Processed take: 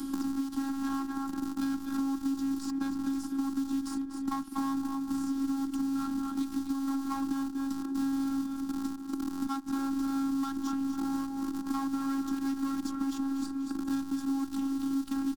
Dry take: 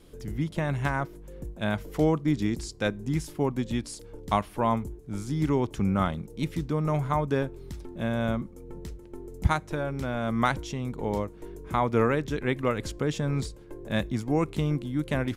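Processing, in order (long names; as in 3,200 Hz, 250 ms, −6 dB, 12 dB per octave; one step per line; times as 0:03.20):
in parallel at −3.5 dB: comparator with hysteresis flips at −36.5 dBFS
on the sum: repeating echo 241 ms, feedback 28%, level −12 dB
downward compressor 3 to 1, threshold −24 dBFS, peak gain reduction 8 dB
asymmetric clip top −29 dBFS
high-pass filter 50 Hz 12 dB per octave
phases set to zero 272 Hz
drawn EQ curve 150 Hz 0 dB, 320 Hz +14 dB, 510 Hz −24 dB, 790 Hz +3 dB, 1,400 Hz +7 dB, 2,100 Hz −9 dB, 4,800 Hz +7 dB
multiband upward and downward compressor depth 100%
level −8.5 dB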